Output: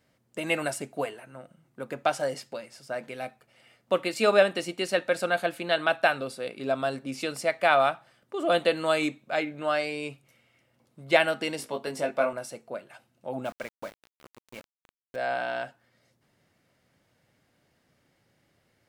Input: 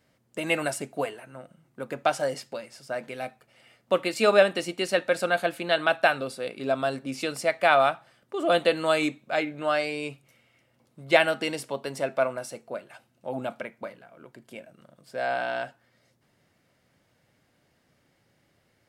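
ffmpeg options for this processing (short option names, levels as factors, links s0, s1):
-filter_complex "[0:a]asettb=1/sr,asplit=3[s0][s1][s2];[s0]atrim=end=11.574[s3];[s1]atrim=start=11.57:end=12.33,asetpts=PTS-STARTPTS,afade=t=in:d=0.004:c=qsin,afade=t=out:st=0.756:d=0.004:c=qsin,asplit=2[s4][s5];[s5]adelay=19,volume=0.668[s6];[s4][s6]amix=inputs=2:normalize=0,atrim=end_sample=33516[s7];[s2]atrim=start=12.326[s8];[s3][s7]acrossfade=d=0.004:c1=hsin:c2=qsin[s9];[s9][s8]acrossfade=d=0.004:c1=qsin:c2=hsin,asettb=1/sr,asplit=3[s10][s11][s12];[s10]atrim=end=13.454[s13];[s11]atrim=start=13.45:end=15.16,asetpts=PTS-STARTPTS,afade=t=in:d=0.004:c=qsin,afade=t=out:st=1.706:d=0.004:c=qsin,aeval=exprs='val(0)*gte(abs(val(0)),0.01)':c=same[s14];[s12]atrim=start=15.156[s15];[s13][s14]acrossfade=d=0.004:c1=hsin:c2=qsin[s16];[s16][s15]acrossfade=d=0.004:c1=qsin:c2=hsin,volume=0.841"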